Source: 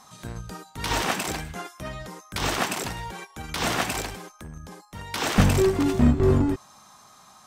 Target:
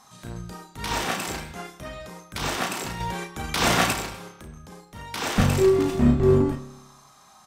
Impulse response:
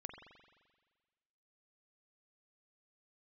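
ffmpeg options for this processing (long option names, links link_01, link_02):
-filter_complex "[0:a]asplit=2[link_01][link_02];[link_02]adelay=34,volume=-6dB[link_03];[link_01][link_03]amix=inputs=2:normalize=0,asettb=1/sr,asplit=3[link_04][link_05][link_06];[link_04]atrim=end=3.004[link_07];[link_05]atrim=start=3:end=3.93,asetpts=PTS-STARTPTS,afade=type=in:duration=0.004:curve=qsin,afade=type=out:start_time=0.926:duration=0.004:curve=qsin,acontrast=66[link_08];[link_06]atrim=start=3.926[link_09];[link_07][link_08]acrossfade=duration=0.004:curve1=hsin:curve2=qsin[link_10];[link_10][link_09]acrossfade=duration=0.004:curve1=qsin:curve2=hsin,asplit=2[link_11][link_12];[1:a]atrim=start_sample=2205,asetrate=66150,aresample=44100[link_13];[link_12][link_13]afir=irnorm=-1:irlink=0,volume=7dB[link_14];[link_11][link_14]amix=inputs=2:normalize=0,volume=-7.5dB"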